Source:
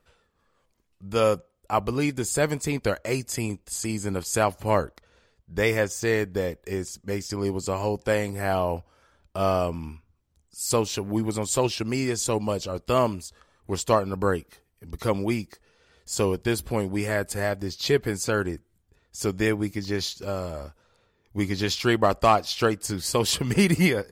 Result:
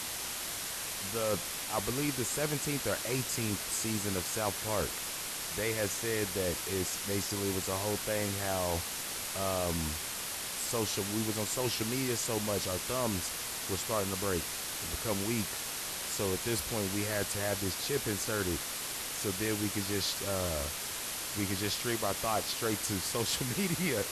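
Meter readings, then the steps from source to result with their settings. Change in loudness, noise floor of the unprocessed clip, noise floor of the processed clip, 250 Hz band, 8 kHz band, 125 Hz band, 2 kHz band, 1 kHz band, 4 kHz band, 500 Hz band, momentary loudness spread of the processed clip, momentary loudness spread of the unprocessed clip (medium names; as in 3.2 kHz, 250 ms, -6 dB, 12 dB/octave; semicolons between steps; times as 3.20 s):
-6.5 dB, -70 dBFS, -39 dBFS, -8.5 dB, +0.5 dB, -8.5 dB, -6.0 dB, -10.0 dB, -1.5 dB, -9.5 dB, 4 LU, 10 LU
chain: reverse; compression 5:1, threshold -31 dBFS, peak gain reduction 16 dB; reverse; word length cut 6-bit, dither triangular; brick-wall FIR low-pass 13 kHz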